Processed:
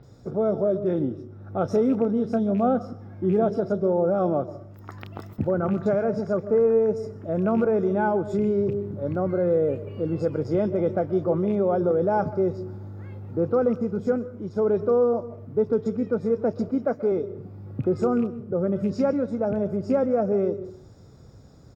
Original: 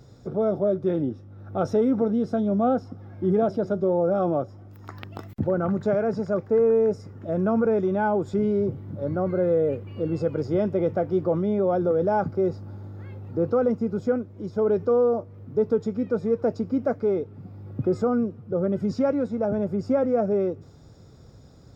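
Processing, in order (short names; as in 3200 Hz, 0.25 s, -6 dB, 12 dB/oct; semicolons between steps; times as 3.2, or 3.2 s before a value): rattling part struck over -23 dBFS, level -35 dBFS; 16.69–17.12 HPF 160 Hz; bands offset in time lows, highs 30 ms, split 3400 Hz; reverb RT60 0.50 s, pre-delay 0.124 s, DRR 15.5 dB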